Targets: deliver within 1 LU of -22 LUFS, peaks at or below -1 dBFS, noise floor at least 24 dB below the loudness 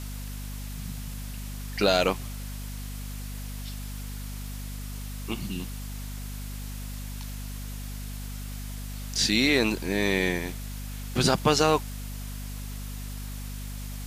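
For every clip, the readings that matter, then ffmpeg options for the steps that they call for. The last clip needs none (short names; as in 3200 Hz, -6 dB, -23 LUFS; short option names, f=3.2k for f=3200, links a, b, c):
hum 50 Hz; harmonics up to 250 Hz; hum level -34 dBFS; noise floor -36 dBFS; noise floor target -54 dBFS; loudness -30.0 LUFS; peak -7.5 dBFS; loudness target -22.0 LUFS
-> -af "bandreject=f=50:t=h:w=6,bandreject=f=100:t=h:w=6,bandreject=f=150:t=h:w=6,bandreject=f=200:t=h:w=6,bandreject=f=250:t=h:w=6"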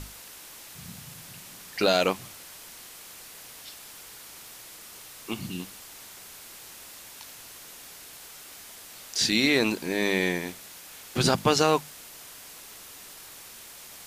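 hum none; noise floor -46 dBFS; noise floor target -50 dBFS
-> -af "afftdn=nr=6:nf=-46"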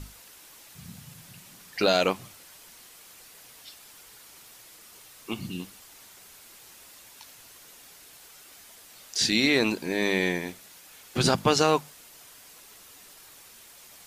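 noise floor -51 dBFS; loudness -25.5 LUFS; peak -7.5 dBFS; loudness target -22.0 LUFS
-> -af "volume=3.5dB"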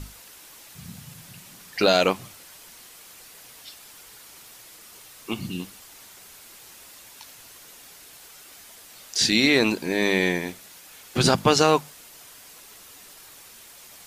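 loudness -22.0 LUFS; peak -4.0 dBFS; noise floor -48 dBFS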